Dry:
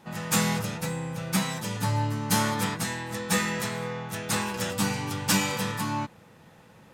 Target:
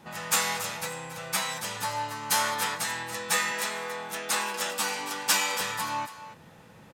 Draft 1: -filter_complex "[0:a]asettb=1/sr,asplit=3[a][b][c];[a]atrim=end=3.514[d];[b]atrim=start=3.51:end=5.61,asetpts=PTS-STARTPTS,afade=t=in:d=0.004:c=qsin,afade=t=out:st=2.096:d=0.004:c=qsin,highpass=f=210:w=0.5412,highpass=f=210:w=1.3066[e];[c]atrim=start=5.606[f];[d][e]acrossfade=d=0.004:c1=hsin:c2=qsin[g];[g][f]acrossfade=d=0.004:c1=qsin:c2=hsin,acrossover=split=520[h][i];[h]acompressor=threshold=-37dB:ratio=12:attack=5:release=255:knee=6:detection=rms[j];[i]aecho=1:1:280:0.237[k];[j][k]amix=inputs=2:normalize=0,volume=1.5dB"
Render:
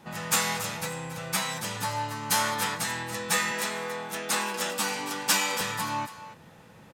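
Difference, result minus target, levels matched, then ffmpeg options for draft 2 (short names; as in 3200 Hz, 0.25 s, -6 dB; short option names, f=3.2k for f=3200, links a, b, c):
compressor: peak gain reduction -7 dB
-filter_complex "[0:a]asettb=1/sr,asplit=3[a][b][c];[a]atrim=end=3.514[d];[b]atrim=start=3.51:end=5.61,asetpts=PTS-STARTPTS,afade=t=in:d=0.004:c=qsin,afade=t=out:st=2.096:d=0.004:c=qsin,highpass=f=210:w=0.5412,highpass=f=210:w=1.3066[e];[c]atrim=start=5.606[f];[d][e]acrossfade=d=0.004:c1=hsin:c2=qsin[g];[g][f]acrossfade=d=0.004:c1=qsin:c2=hsin,acrossover=split=520[h][i];[h]acompressor=threshold=-44.5dB:ratio=12:attack=5:release=255:knee=6:detection=rms[j];[i]aecho=1:1:280:0.237[k];[j][k]amix=inputs=2:normalize=0,volume=1.5dB"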